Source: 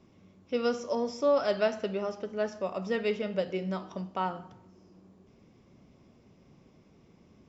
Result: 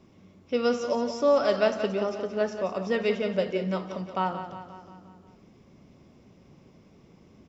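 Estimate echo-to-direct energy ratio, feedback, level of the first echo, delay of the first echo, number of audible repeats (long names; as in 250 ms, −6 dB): −8.5 dB, 56%, −10.0 dB, 177 ms, 5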